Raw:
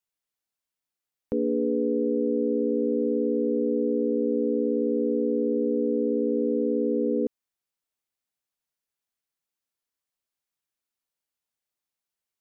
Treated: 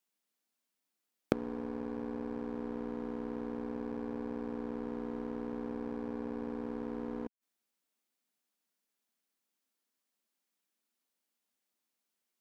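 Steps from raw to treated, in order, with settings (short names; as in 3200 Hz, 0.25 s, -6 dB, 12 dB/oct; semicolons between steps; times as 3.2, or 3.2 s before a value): resonant low shelf 150 Hz -13 dB, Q 3; flipped gate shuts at -25 dBFS, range -36 dB; sample leveller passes 3; gain +8 dB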